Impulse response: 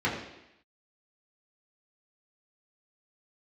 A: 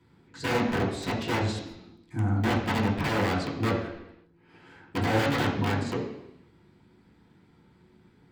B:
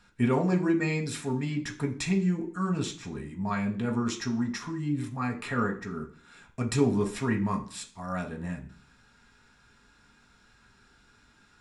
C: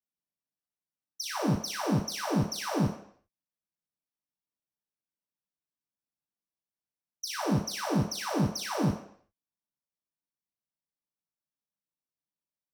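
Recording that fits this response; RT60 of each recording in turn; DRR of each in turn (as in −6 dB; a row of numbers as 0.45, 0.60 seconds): A; 0.85, 0.45, 0.60 seconds; −7.0, 0.5, −7.0 decibels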